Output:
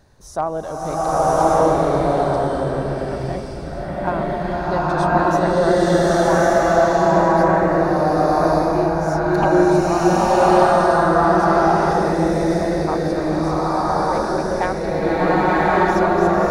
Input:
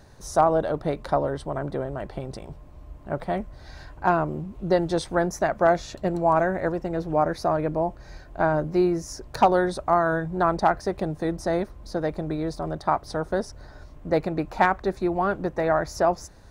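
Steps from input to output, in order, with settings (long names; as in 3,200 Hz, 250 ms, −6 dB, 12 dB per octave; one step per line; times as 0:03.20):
slow-attack reverb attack 1,170 ms, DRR −11.5 dB
level −3.5 dB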